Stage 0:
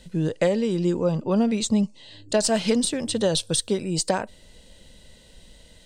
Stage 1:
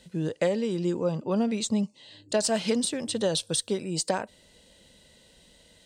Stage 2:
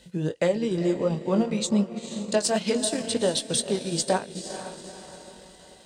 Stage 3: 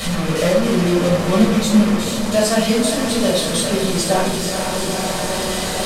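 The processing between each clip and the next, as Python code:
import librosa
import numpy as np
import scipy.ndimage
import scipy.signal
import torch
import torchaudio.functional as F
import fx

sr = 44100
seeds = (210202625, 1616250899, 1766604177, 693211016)

y1 = fx.highpass(x, sr, hz=140.0, slope=6)
y1 = F.gain(torch.from_numpy(y1), -3.5).numpy()
y2 = fx.echo_diffused(y1, sr, ms=457, feedback_pct=47, wet_db=-9.0)
y2 = fx.chorus_voices(y2, sr, voices=4, hz=0.91, base_ms=19, depth_ms=4.8, mix_pct=30)
y2 = fx.transient(y2, sr, attack_db=0, sustain_db=-6)
y2 = F.gain(torch.from_numpy(y2), 4.5).numpy()
y3 = fx.delta_mod(y2, sr, bps=64000, step_db=-22.0)
y3 = fx.room_shoebox(y3, sr, seeds[0], volume_m3=540.0, walls='furnished', distance_m=6.3)
y3 = F.gain(torch.from_numpy(y3), -2.5).numpy()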